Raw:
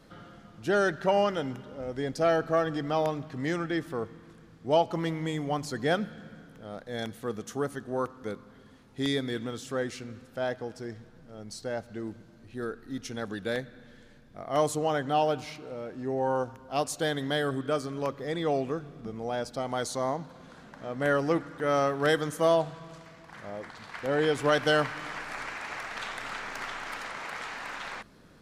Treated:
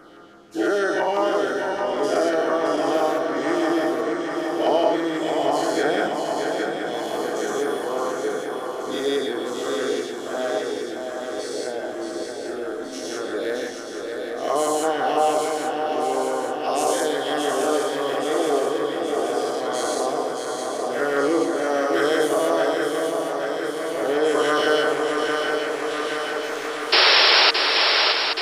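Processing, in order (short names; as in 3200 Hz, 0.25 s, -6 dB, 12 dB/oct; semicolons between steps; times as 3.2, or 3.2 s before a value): spectral dilation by 0.24 s; LFO notch saw down 6 Hz 740–4200 Hz; resonant low shelf 230 Hz -12.5 dB, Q 1.5; reverb RT60 0.55 s, pre-delay 3 ms, DRR 6.5 dB; painted sound noise, 26.92–27.51, 350–5600 Hz -13 dBFS; swung echo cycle 0.826 s, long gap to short 3:1, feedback 65%, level -5.5 dB; gain -2 dB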